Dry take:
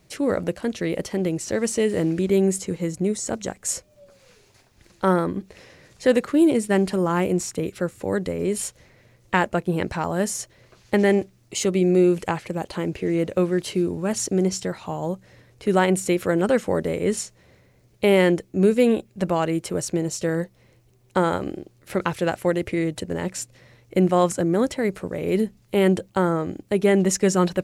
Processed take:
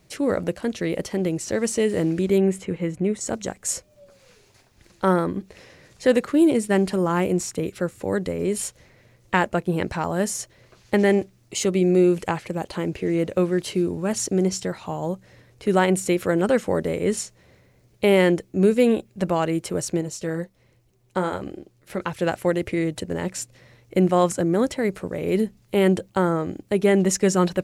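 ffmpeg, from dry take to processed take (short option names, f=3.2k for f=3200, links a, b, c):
-filter_complex "[0:a]asettb=1/sr,asplit=3[a][b][c];[a]atrim=end=2.384[d];[b]atrim=start=2.38:end=3.21,asetpts=PTS-STARTPTS,afade=t=in:d=0.004:c=qsin,afade=t=out:st=0.826:d=0.004:c=qsin,highshelf=f=3.7k:t=q:w=1.5:g=-9.5[e];[c]atrim=start=3.206[f];[d][e]acrossfade=d=0.004:c1=hsin:c2=qsin[g];[g][f]acrossfade=d=0.004:c1=qsin:c2=hsin,asettb=1/sr,asplit=3[h][i][j];[h]atrim=end=20.014[k];[i]atrim=start=20.01:end=22.2,asetpts=PTS-STARTPTS,afade=t=in:d=0.004:c=qsin,afade=t=out:st=2.186:d=0.004:c=qsin,flanger=delay=0.6:depth=6.5:regen=-51:speed=1.4:shape=triangular[l];[j]atrim=start=22.196[m];[k][l]acrossfade=d=0.004:c1=hsin:c2=qsin[n];[n][m]acrossfade=d=0.004:c1=qsin:c2=hsin"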